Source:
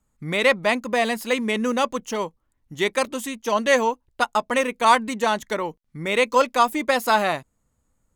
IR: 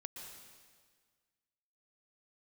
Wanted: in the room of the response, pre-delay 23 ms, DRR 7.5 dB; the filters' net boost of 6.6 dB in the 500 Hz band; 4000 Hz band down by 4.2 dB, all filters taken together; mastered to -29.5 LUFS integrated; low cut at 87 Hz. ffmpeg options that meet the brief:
-filter_complex "[0:a]highpass=87,equalizer=f=500:t=o:g=7.5,equalizer=f=4k:t=o:g=-5.5,asplit=2[a][b];[1:a]atrim=start_sample=2205,adelay=23[c];[b][c]afir=irnorm=-1:irlink=0,volume=-4dB[d];[a][d]amix=inputs=2:normalize=0,volume=-11.5dB"

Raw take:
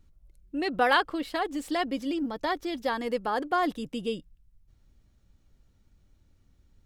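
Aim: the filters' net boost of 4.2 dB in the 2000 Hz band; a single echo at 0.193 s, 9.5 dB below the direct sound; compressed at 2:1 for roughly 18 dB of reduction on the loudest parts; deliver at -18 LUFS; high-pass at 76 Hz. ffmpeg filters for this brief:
-af "highpass=76,equalizer=f=2k:t=o:g=5.5,acompressor=threshold=-51dB:ratio=2,aecho=1:1:193:0.335,volume=24dB"

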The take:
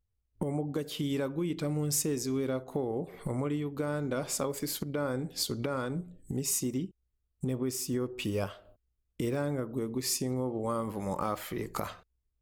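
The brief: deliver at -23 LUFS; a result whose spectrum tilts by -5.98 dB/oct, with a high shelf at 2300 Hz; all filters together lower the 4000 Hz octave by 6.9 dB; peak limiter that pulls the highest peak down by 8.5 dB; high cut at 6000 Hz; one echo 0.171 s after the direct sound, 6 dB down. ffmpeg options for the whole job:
-af "lowpass=6k,highshelf=f=2.3k:g=-4,equalizer=f=4k:t=o:g=-3.5,alimiter=level_in=2.5dB:limit=-24dB:level=0:latency=1,volume=-2.5dB,aecho=1:1:171:0.501,volume=13dB"

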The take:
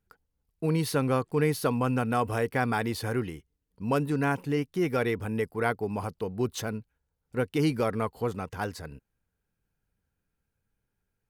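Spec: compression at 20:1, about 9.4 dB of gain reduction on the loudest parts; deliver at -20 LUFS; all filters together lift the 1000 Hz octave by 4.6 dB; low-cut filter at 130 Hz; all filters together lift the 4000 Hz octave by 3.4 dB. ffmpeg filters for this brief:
-af "highpass=130,equalizer=f=1k:t=o:g=6,equalizer=f=4k:t=o:g=4,acompressor=threshold=-27dB:ratio=20,volume=14dB"

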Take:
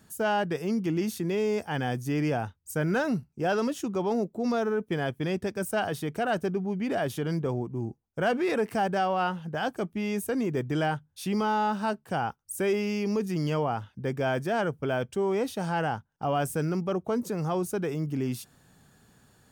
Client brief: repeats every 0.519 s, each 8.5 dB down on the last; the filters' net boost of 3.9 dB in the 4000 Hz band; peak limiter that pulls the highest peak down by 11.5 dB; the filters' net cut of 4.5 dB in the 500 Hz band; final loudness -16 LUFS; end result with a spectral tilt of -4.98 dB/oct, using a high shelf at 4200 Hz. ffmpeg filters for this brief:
-af "equalizer=f=500:t=o:g=-6,equalizer=f=4k:t=o:g=9,highshelf=f=4.2k:g=-5.5,alimiter=level_in=4.5dB:limit=-24dB:level=0:latency=1,volume=-4.5dB,aecho=1:1:519|1038|1557|2076:0.376|0.143|0.0543|0.0206,volume=20dB"

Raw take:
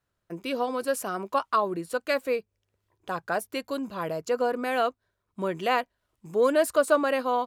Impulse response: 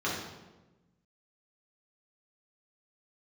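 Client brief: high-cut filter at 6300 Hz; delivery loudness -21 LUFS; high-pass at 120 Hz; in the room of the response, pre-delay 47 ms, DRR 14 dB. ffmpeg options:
-filter_complex "[0:a]highpass=120,lowpass=6.3k,asplit=2[a][b];[1:a]atrim=start_sample=2205,adelay=47[c];[b][c]afir=irnorm=-1:irlink=0,volume=-23.5dB[d];[a][d]amix=inputs=2:normalize=0,volume=6.5dB"

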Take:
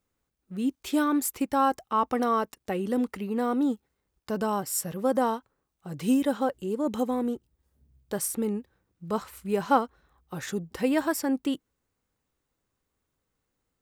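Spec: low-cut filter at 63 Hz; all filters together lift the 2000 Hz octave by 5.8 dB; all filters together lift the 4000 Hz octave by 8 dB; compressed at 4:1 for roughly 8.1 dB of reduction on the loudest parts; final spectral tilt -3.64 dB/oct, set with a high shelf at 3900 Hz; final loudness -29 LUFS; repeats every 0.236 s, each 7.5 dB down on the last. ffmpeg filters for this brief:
-af "highpass=63,equalizer=f=2k:t=o:g=5.5,highshelf=f=3.9k:g=7.5,equalizer=f=4k:t=o:g=4,acompressor=threshold=-24dB:ratio=4,aecho=1:1:236|472|708|944|1180:0.422|0.177|0.0744|0.0312|0.0131,volume=0.5dB"

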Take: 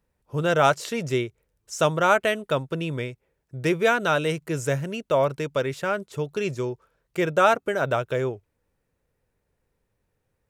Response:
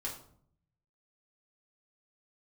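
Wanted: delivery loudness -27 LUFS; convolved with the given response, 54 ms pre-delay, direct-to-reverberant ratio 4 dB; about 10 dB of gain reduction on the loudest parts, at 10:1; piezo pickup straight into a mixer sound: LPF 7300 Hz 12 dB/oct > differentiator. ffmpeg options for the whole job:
-filter_complex "[0:a]acompressor=threshold=-24dB:ratio=10,asplit=2[a][b];[1:a]atrim=start_sample=2205,adelay=54[c];[b][c]afir=irnorm=-1:irlink=0,volume=-5dB[d];[a][d]amix=inputs=2:normalize=0,lowpass=7.3k,aderivative,volume=17dB"

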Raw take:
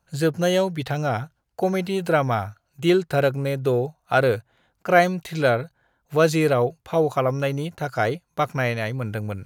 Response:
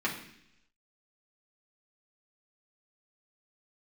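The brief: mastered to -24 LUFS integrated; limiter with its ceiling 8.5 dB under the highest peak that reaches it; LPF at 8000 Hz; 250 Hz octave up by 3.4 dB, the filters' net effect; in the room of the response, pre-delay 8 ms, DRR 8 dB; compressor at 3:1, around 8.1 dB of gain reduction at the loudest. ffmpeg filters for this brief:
-filter_complex "[0:a]lowpass=8k,equalizer=f=250:t=o:g=5.5,acompressor=threshold=-22dB:ratio=3,alimiter=limit=-20dB:level=0:latency=1,asplit=2[a][b];[1:a]atrim=start_sample=2205,adelay=8[c];[b][c]afir=irnorm=-1:irlink=0,volume=-16.5dB[d];[a][d]amix=inputs=2:normalize=0,volume=5dB"

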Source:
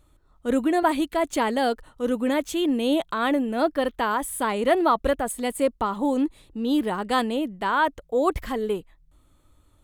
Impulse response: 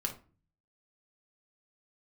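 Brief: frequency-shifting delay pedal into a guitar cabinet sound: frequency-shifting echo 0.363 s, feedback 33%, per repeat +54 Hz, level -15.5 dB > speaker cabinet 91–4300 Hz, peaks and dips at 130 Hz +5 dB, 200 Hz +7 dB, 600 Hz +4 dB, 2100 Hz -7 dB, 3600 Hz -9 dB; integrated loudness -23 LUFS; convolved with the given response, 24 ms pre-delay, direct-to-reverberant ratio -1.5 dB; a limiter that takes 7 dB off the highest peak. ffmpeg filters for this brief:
-filter_complex "[0:a]alimiter=limit=-15dB:level=0:latency=1,asplit=2[a][b];[1:a]atrim=start_sample=2205,adelay=24[c];[b][c]afir=irnorm=-1:irlink=0,volume=-0.5dB[d];[a][d]amix=inputs=2:normalize=0,asplit=4[e][f][g][h];[f]adelay=363,afreqshift=54,volume=-15.5dB[i];[g]adelay=726,afreqshift=108,volume=-25.1dB[j];[h]adelay=1089,afreqshift=162,volume=-34.8dB[k];[e][i][j][k]amix=inputs=4:normalize=0,highpass=91,equalizer=f=130:t=q:w=4:g=5,equalizer=f=200:t=q:w=4:g=7,equalizer=f=600:t=q:w=4:g=4,equalizer=f=2.1k:t=q:w=4:g=-7,equalizer=f=3.6k:t=q:w=4:g=-9,lowpass=f=4.3k:w=0.5412,lowpass=f=4.3k:w=1.3066,volume=-3dB"

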